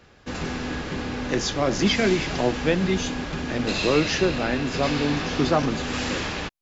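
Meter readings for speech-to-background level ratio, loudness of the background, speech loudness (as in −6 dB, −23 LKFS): 4.0 dB, −29.0 LKFS, −25.0 LKFS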